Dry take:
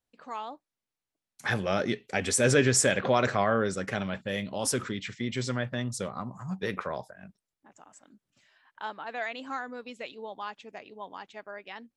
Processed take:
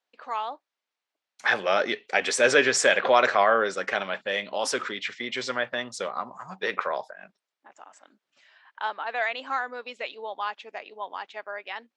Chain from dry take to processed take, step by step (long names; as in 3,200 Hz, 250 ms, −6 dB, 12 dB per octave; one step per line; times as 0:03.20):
band-pass filter 550–4,600 Hz
level +7.5 dB